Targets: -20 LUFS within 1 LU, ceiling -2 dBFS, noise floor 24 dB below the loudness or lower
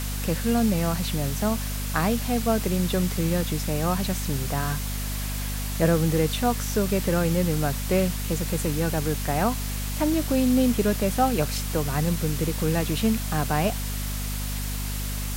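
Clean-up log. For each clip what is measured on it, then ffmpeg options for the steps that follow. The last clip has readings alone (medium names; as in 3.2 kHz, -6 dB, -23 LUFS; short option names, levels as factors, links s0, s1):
hum 50 Hz; highest harmonic 250 Hz; hum level -28 dBFS; noise floor -29 dBFS; noise floor target -49 dBFS; loudness -25.0 LUFS; peak level -9.0 dBFS; loudness target -20.0 LUFS
-> -af "bandreject=f=50:t=h:w=6,bandreject=f=100:t=h:w=6,bandreject=f=150:t=h:w=6,bandreject=f=200:t=h:w=6,bandreject=f=250:t=h:w=6"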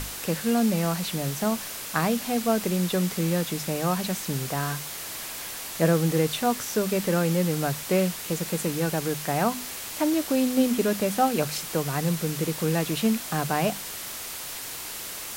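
hum not found; noise floor -36 dBFS; noise floor target -50 dBFS
-> -af "afftdn=nr=14:nf=-36"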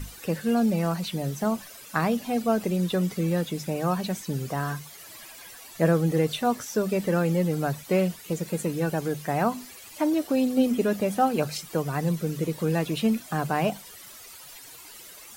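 noise floor -46 dBFS; noise floor target -51 dBFS
-> -af "afftdn=nr=6:nf=-46"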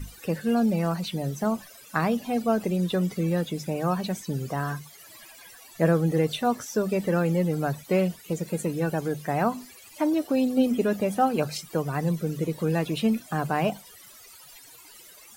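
noise floor -50 dBFS; noise floor target -51 dBFS
-> -af "afftdn=nr=6:nf=-50"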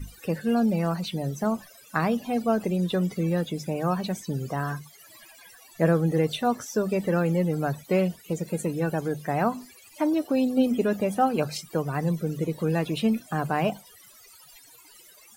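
noise floor -53 dBFS; loudness -26.5 LUFS; peak level -9.5 dBFS; loudness target -20.0 LUFS
-> -af "volume=2.11"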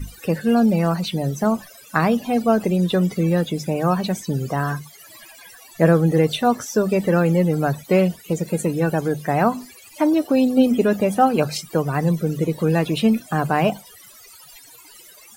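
loudness -20.0 LUFS; peak level -3.0 dBFS; noise floor -46 dBFS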